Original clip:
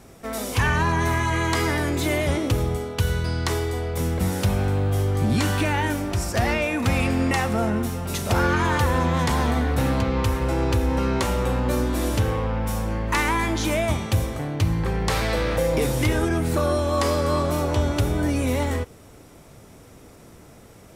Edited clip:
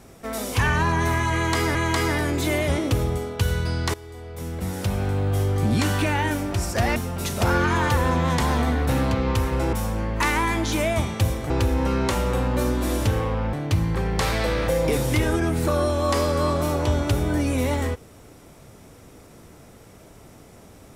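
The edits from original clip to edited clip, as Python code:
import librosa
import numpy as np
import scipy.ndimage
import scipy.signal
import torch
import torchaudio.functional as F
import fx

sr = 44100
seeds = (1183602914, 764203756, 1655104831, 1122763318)

y = fx.edit(x, sr, fx.repeat(start_s=1.34, length_s=0.41, count=2),
    fx.fade_in_from(start_s=3.53, length_s=1.44, floor_db=-19.5),
    fx.cut(start_s=6.55, length_s=1.3),
    fx.move(start_s=12.65, length_s=1.77, to_s=10.62), tone=tone)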